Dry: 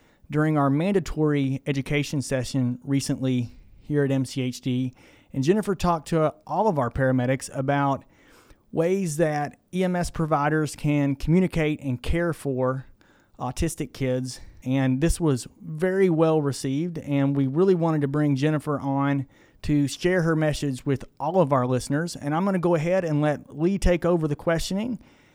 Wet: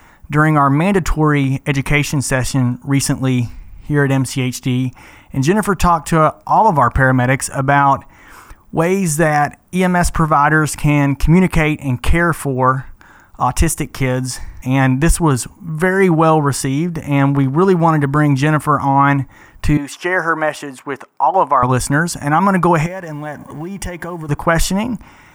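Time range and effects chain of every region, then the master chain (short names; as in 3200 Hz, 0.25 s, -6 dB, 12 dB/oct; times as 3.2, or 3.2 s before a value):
19.77–21.63 HPF 460 Hz + high shelf 2600 Hz -11 dB
22.86–24.29 G.711 law mismatch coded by mu + notch comb 1300 Hz + compressor 4:1, threshold -34 dBFS
whole clip: graphic EQ 125/250/500/1000/4000 Hz -4/-6/-11/+6/-10 dB; maximiser +17 dB; gain -1 dB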